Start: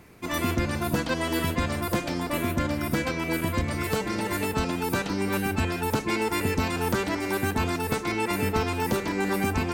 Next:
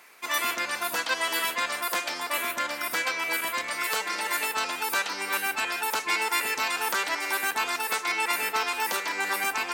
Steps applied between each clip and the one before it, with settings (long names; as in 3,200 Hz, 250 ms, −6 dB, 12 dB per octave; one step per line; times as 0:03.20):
high-pass filter 1,000 Hz 12 dB per octave
level +5 dB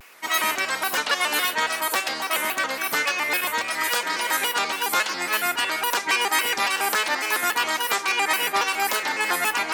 pitch modulation by a square or saw wave square 3.6 Hz, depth 160 cents
level +4.5 dB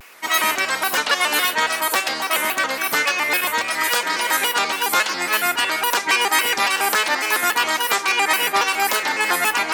floating-point word with a short mantissa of 8 bits
level +4 dB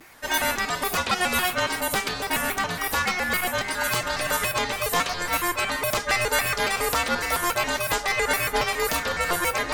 tuned comb filter 120 Hz, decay 0.22 s, harmonics odd, mix 50%
frequency shifter −360 Hz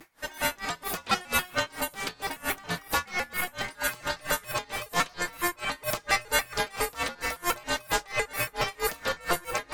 rectangular room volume 3,500 cubic metres, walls furnished, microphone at 0.67 metres
tremolo with a sine in dB 4.4 Hz, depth 25 dB